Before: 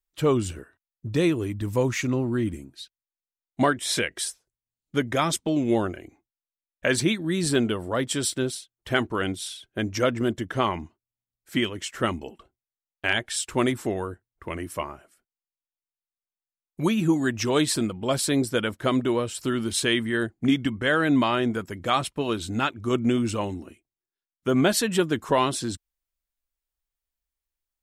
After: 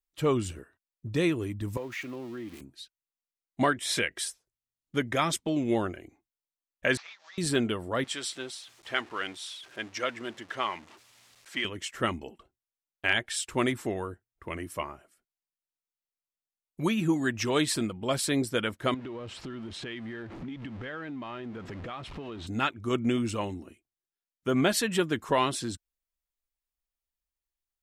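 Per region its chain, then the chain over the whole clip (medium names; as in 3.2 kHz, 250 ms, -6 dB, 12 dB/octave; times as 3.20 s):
1.77–2.61 s: zero-crossing glitches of -23.5 dBFS + three-band isolator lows -13 dB, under 250 Hz, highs -17 dB, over 4.2 kHz + compression 2:1, threshold -35 dBFS
6.97–7.38 s: CVSD coder 32 kbps + inverse Chebyshev high-pass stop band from 360 Hz + compression 5:1, threshold -43 dBFS
8.04–11.65 s: jump at every zero crossing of -37 dBFS + high-pass 1 kHz 6 dB/octave + distance through air 60 m
18.94–22.47 s: jump at every zero crossing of -31 dBFS + low-pass 3.2 kHz + compression, threshold -32 dBFS
whole clip: band-stop 1.5 kHz, Q 28; dynamic bell 2 kHz, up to +4 dB, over -38 dBFS, Q 0.92; trim -4.5 dB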